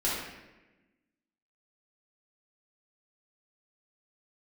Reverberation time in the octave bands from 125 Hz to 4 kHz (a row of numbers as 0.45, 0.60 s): 1.4, 1.6, 1.2, 1.0, 1.1, 0.80 s